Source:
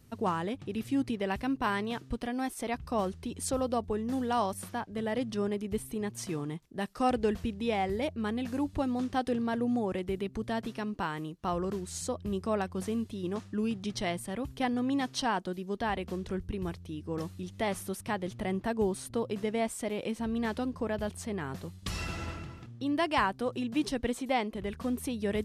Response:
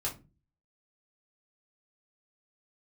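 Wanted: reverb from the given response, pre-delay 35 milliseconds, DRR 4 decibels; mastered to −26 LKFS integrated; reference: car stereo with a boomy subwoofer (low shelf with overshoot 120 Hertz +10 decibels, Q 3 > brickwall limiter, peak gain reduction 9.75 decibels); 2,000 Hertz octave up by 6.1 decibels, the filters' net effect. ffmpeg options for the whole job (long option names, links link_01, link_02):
-filter_complex "[0:a]equalizer=frequency=2000:width_type=o:gain=7.5,asplit=2[link_01][link_02];[1:a]atrim=start_sample=2205,adelay=35[link_03];[link_02][link_03]afir=irnorm=-1:irlink=0,volume=-7dB[link_04];[link_01][link_04]amix=inputs=2:normalize=0,lowshelf=frequency=120:width_type=q:width=3:gain=10,volume=4dB,alimiter=limit=-14.5dB:level=0:latency=1"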